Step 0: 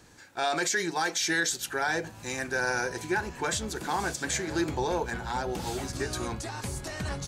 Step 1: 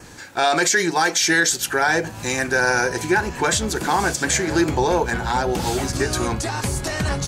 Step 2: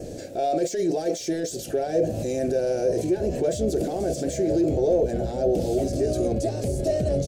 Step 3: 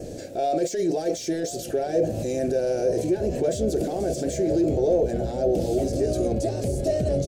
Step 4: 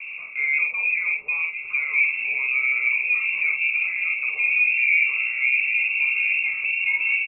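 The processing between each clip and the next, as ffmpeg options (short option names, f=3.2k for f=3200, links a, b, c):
-filter_complex "[0:a]adynamicequalizer=threshold=0.00224:dfrequency=3800:dqfactor=5.7:tfrequency=3800:tqfactor=5.7:attack=5:release=100:ratio=0.375:range=2:mode=cutabove:tftype=bell,asplit=2[a][b];[b]acompressor=threshold=-39dB:ratio=6,volume=-2dB[c];[a][c]amix=inputs=2:normalize=0,volume=8.5dB"
-af "asoftclip=type=tanh:threshold=-13.5dB,alimiter=level_in=1.5dB:limit=-24dB:level=0:latency=1:release=39,volume=-1.5dB,firequalizer=gain_entry='entry(160,0);entry(630,11);entry(920,-25);entry(2500,-14);entry(5100,-9)':delay=0.05:min_phase=1,volume=6dB"
-filter_complex "[0:a]asplit=2[a][b];[b]adelay=1050,volume=-16dB,highshelf=f=4k:g=-23.6[c];[a][c]amix=inputs=2:normalize=0"
-filter_complex "[0:a]asplit=2[a][b];[b]adelay=48,volume=-5dB[c];[a][c]amix=inputs=2:normalize=0,lowpass=f=2.4k:t=q:w=0.5098,lowpass=f=2.4k:t=q:w=0.6013,lowpass=f=2.4k:t=q:w=0.9,lowpass=f=2.4k:t=q:w=2.563,afreqshift=-2800"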